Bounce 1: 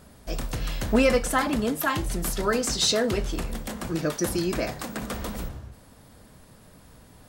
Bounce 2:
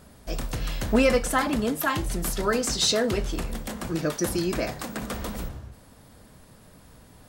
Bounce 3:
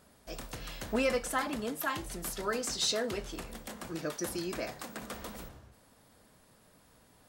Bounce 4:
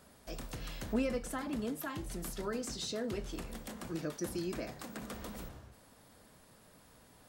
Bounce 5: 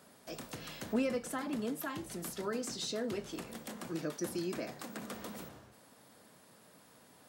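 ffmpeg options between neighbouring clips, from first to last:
-af anull
-af "lowshelf=f=200:g=-9.5,volume=-7.5dB"
-filter_complex "[0:a]acrossover=split=370[a][b];[b]acompressor=threshold=-50dB:ratio=2[c];[a][c]amix=inputs=2:normalize=0,volume=1.5dB"
-af "highpass=150,volume=1dB"

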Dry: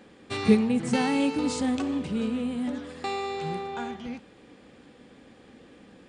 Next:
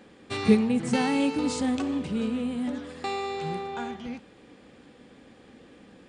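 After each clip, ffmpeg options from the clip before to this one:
-af anull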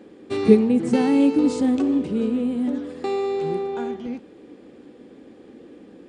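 -af "equalizer=f=350:w=0.99:g=14.5,volume=-3dB"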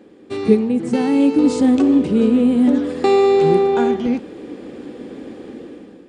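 -af "dynaudnorm=f=310:g=5:m=12.5dB"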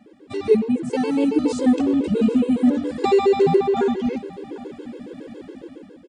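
-af "aecho=1:1:792:0.106,afftfilt=real='re*gt(sin(2*PI*7.2*pts/sr)*(1-2*mod(floor(b*sr/1024/280),2)),0)':imag='im*gt(sin(2*PI*7.2*pts/sr)*(1-2*mod(floor(b*sr/1024/280),2)),0)':win_size=1024:overlap=0.75"

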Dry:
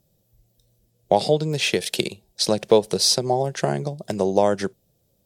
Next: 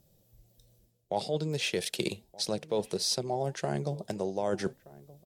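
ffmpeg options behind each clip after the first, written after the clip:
-filter_complex "[0:a]areverse,acompressor=threshold=-29dB:ratio=5,areverse,flanger=delay=0.3:depth=4.4:regen=88:speed=1.6:shape=triangular,asplit=2[a][b];[b]adelay=1224,volume=-20dB,highshelf=f=4k:g=-27.6[c];[a][c]amix=inputs=2:normalize=0,volume=5dB"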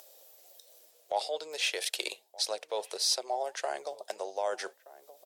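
-af "highpass=f=560:w=0.5412,highpass=f=560:w=1.3066,acompressor=mode=upward:threshold=-46dB:ratio=2.5,volume=2dB"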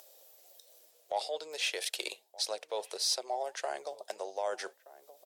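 -af "asoftclip=type=tanh:threshold=-15dB,volume=-2dB"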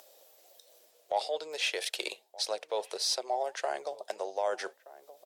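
-af "highshelf=f=5.1k:g=-6.5,volume=3.5dB"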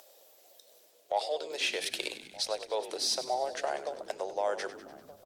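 -filter_complex "[0:a]asplit=8[a][b][c][d][e][f][g][h];[b]adelay=98,afreqshift=-58,volume=-13dB[i];[c]adelay=196,afreqshift=-116,volume=-17dB[j];[d]adelay=294,afreqshift=-174,volume=-21dB[k];[e]adelay=392,afreqshift=-232,volume=-25dB[l];[f]adelay=490,afreqshift=-290,volume=-29.1dB[m];[g]adelay=588,afreqshift=-348,volume=-33.1dB[n];[h]adelay=686,afreqshift=-406,volume=-37.1dB[o];[a][i][j][k][l][m][n][o]amix=inputs=8:normalize=0"

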